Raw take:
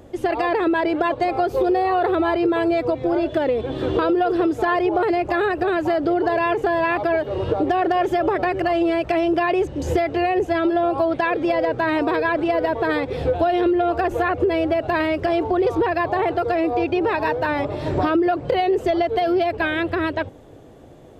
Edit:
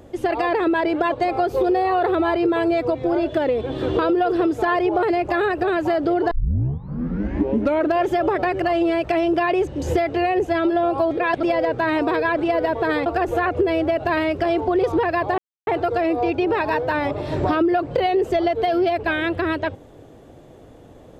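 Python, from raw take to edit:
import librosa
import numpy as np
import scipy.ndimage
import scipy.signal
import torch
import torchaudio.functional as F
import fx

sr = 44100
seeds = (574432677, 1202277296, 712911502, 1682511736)

y = fx.edit(x, sr, fx.tape_start(start_s=6.31, length_s=1.72),
    fx.reverse_span(start_s=11.11, length_s=0.32),
    fx.cut(start_s=13.06, length_s=0.83),
    fx.insert_silence(at_s=16.21, length_s=0.29), tone=tone)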